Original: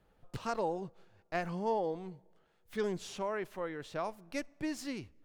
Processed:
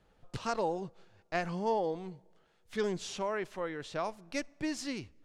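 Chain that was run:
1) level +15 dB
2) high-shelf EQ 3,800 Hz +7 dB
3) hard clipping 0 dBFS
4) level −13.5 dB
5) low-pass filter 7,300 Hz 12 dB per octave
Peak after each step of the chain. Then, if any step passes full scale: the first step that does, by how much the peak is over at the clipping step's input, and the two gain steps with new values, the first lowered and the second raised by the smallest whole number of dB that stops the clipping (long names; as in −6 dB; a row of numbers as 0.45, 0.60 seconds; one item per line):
−6.0, −4.5, −4.5, −18.0, −18.0 dBFS
no step passes full scale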